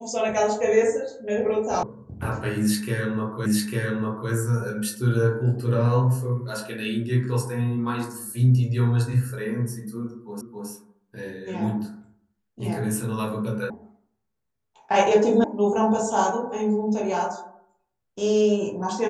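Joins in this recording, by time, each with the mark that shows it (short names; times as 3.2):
1.83 sound cut off
3.46 repeat of the last 0.85 s
10.41 repeat of the last 0.27 s
13.7 sound cut off
15.44 sound cut off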